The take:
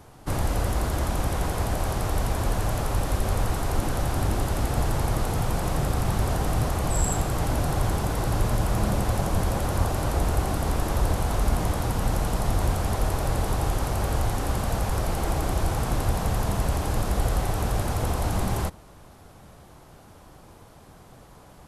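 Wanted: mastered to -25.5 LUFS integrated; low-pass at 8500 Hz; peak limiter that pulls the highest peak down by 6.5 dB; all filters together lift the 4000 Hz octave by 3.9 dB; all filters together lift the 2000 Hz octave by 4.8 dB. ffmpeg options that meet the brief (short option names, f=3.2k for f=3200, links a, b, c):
-af "lowpass=8.5k,equalizer=f=2k:t=o:g=5.5,equalizer=f=4k:t=o:g=3.5,volume=2dB,alimiter=limit=-14.5dB:level=0:latency=1"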